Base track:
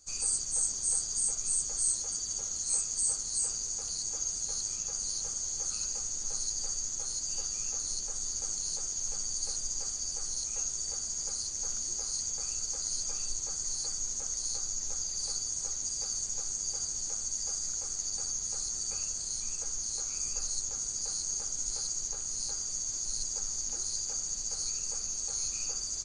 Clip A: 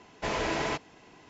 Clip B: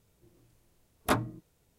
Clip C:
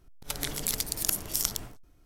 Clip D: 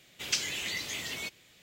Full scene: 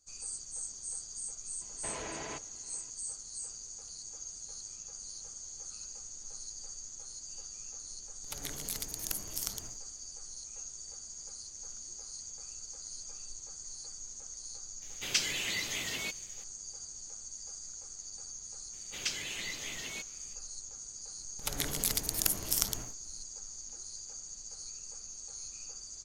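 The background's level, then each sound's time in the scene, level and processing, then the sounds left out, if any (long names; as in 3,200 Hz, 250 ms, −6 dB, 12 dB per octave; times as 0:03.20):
base track −10.5 dB
0:01.61: mix in A −9 dB + brickwall limiter −24 dBFS
0:08.02: mix in C −8.5 dB
0:14.82: mix in D
0:18.73: mix in D −4.5 dB + high-shelf EQ 8,900 Hz −4 dB
0:21.17: mix in C −1.5 dB
not used: B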